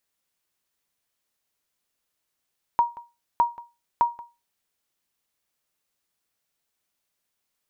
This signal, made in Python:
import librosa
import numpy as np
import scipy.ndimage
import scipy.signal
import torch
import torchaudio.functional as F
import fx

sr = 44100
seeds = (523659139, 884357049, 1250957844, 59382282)

y = fx.sonar_ping(sr, hz=947.0, decay_s=0.26, every_s=0.61, pings=3, echo_s=0.18, echo_db=-20.0, level_db=-11.5)